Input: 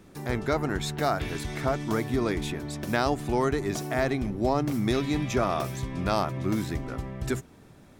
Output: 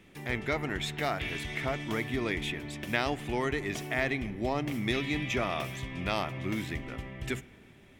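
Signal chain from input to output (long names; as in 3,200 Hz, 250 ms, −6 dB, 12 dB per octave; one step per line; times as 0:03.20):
flat-topped bell 2,500 Hz +11 dB 1.1 octaves
on a send: convolution reverb RT60 2.3 s, pre-delay 7 ms, DRR 18 dB
on the sum: level −6 dB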